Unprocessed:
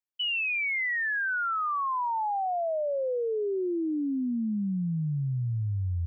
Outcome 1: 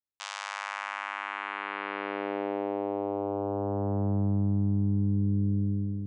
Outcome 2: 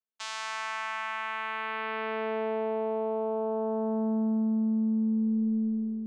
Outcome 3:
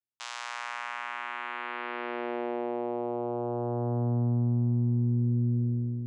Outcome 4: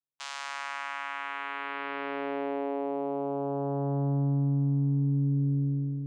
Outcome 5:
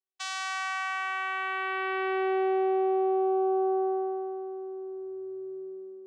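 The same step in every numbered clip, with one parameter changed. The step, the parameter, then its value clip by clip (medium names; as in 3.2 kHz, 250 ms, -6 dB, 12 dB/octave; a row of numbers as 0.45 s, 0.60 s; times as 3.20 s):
vocoder, frequency: 100 Hz, 220 Hz, 120 Hz, 140 Hz, 380 Hz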